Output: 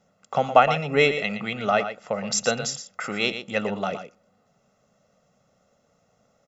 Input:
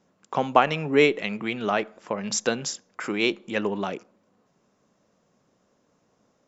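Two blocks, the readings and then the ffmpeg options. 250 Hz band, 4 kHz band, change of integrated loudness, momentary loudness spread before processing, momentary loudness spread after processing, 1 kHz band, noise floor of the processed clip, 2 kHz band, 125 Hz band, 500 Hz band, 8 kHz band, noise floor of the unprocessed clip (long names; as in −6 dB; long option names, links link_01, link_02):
−3.0 dB, +2.0 dB, +1.5 dB, 12 LU, 12 LU, +3.0 dB, −67 dBFS, +1.5 dB, +2.5 dB, +1.0 dB, can't be measured, −69 dBFS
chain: -af "aecho=1:1:1.5:0.71,aecho=1:1:117:0.316"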